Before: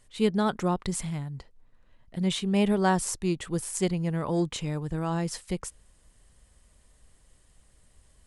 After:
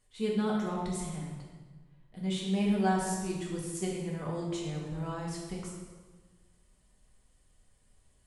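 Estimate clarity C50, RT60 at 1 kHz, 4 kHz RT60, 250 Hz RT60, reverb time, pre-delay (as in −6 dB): 1.5 dB, 1.3 s, 1.1 s, 1.6 s, 1.4 s, 3 ms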